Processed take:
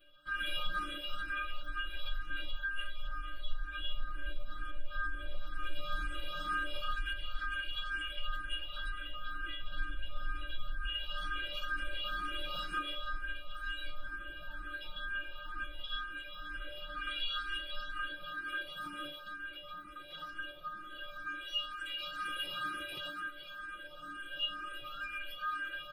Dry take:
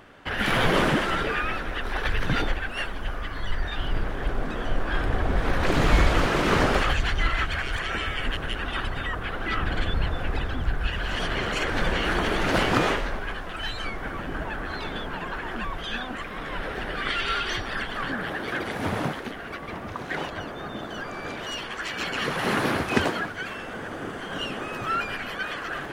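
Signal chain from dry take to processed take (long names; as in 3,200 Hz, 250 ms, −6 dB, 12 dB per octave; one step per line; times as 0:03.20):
flat-topped bell 650 Hz −9 dB
stiff-string resonator 290 Hz, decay 0.49 s, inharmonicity 0.008
downward compressor, threshold −41 dBFS, peak gain reduction 10.5 dB
phaser with its sweep stopped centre 1,300 Hz, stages 8
comb filter 5.7 ms, depth 72%
frequency shifter mixed with the dry sound +2.1 Hz
level +11 dB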